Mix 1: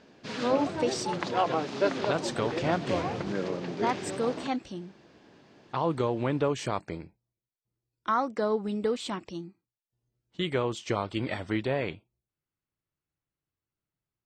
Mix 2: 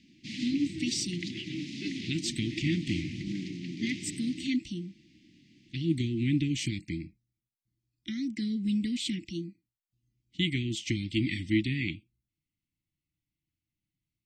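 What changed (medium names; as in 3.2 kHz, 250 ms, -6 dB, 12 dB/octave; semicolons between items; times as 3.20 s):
speech +4.5 dB; master: add Chebyshev band-stop 330–2000 Hz, order 5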